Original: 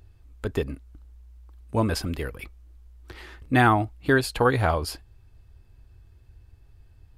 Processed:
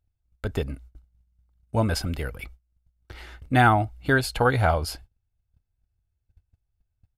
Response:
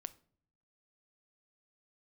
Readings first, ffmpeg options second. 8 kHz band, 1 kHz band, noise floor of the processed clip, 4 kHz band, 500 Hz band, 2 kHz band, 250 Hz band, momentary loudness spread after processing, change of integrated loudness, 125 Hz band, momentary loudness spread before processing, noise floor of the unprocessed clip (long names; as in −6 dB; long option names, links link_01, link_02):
+0.5 dB, +1.5 dB, −78 dBFS, +1.0 dB, −1.0 dB, +1.0 dB, −1.5 dB, 22 LU, +0.5 dB, +2.0 dB, 22 LU, −55 dBFS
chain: -af "agate=range=-26dB:threshold=-45dB:ratio=16:detection=peak,aecho=1:1:1.4:0.36"